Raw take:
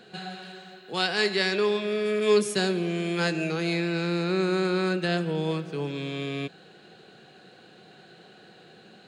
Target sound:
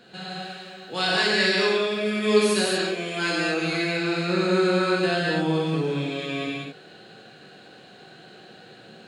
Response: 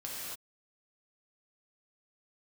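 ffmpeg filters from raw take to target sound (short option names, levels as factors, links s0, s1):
-filter_complex "[0:a]asplit=3[s0][s1][s2];[s0]afade=t=out:st=2.39:d=0.02[s3];[s1]lowshelf=f=170:g=-12,afade=t=in:st=2.39:d=0.02,afade=t=out:st=3.63:d=0.02[s4];[s2]afade=t=in:st=3.63:d=0.02[s5];[s3][s4][s5]amix=inputs=3:normalize=0[s6];[1:a]atrim=start_sample=2205,afade=t=out:st=0.3:d=0.01,atrim=end_sample=13671[s7];[s6][s7]afir=irnorm=-1:irlink=0,volume=1.58"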